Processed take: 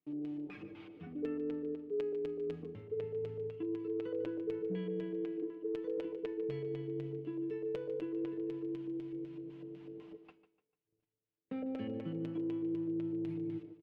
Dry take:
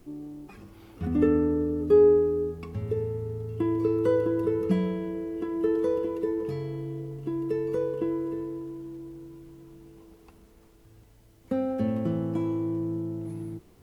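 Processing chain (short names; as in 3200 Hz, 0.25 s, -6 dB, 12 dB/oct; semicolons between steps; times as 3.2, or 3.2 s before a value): HPF 130 Hz 12 dB/oct; gate -53 dBFS, range -34 dB; LFO low-pass square 4 Hz 470–2800 Hz; comb 6.7 ms, depth 52%; reverse; compressor 5:1, threshold -33 dBFS, peak gain reduction 23.5 dB; reverse; resonator 320 Hz, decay 0.58 s, mix 60%; on a send: feedback echo 0.148 s, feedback 36%, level -14 dB; on the sum: dynamic EQ 900 Hz, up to -4 dB, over -57 dBFS, Q 0.96; gain +4 dB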